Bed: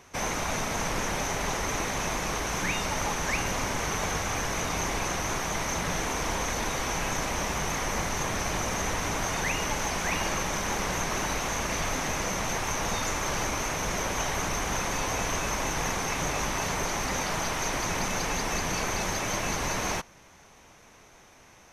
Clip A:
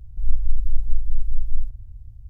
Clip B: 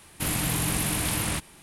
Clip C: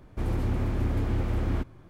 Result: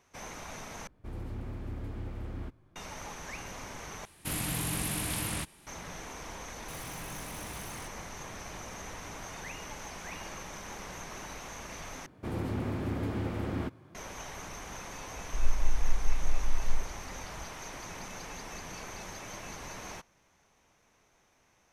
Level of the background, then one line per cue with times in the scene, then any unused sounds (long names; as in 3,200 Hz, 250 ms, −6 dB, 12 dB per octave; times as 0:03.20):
bed −13.5 dB
0:00.87: overwrite with C −12 dB
0:04.05: overwrite with B −6.5 dB
0:06.48: mix in B −13 dB + soft clipping −30 dBFS
0:12.06: overwrite with C −1.5 dB + high-pass filter 120 Hz
0:15.16: mix in A −7.5 dB